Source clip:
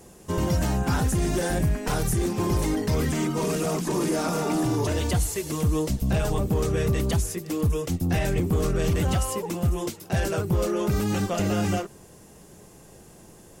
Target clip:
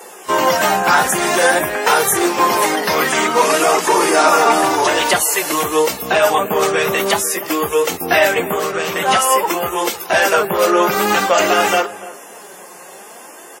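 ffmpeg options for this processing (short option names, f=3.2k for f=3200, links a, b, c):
-filter_complex "[0:a]highpass=810,equalizer=f=6.9k:t=o:w=2.3:g=-9.5,asettb=1/sr,asplit=3[a][b][c];[a]atrim=end=8.504[d];[b]atrim=start=8.5:end=9.08,asetpts=PTS-STARTPTS,afade=t=in:d=0.004:c=qsin,afade=t=out:st=0.576:d=0.004:c=qsin,acompressor=threshold=-38dB:ratio=6[e];[c]atrim=start=9.076[f];[d][e]acrossfade=d=0.004:c1=hsin:c2=qsin[g];[g][f]acrossfade=d=0.004:c1=qsin:c2=hsin,flanger=delay=2.2:depth=3.4:regen=45:speed=0.51:shape=sinusoidal,asplit=2[h][i];[i]adelay=293,lowpass=f=1.3k:p=1,volume=-16dB,asplit=2[j][k];[k]adelay=293,lowpass=f=1.3k:p=1,volume=0.28,asplit=2[l][m];[m]adelay=293,lowpass=f=1.3k:p=1,volume=0.28[n];[h][j][l][n]amix=inputs=4:normalize=0,alimiter=level_in=27dB:limit=-1dB:release=50:level=0:latency=1,volume=-1dB" -ar 44100 -c:a wmav2 -b:a 32k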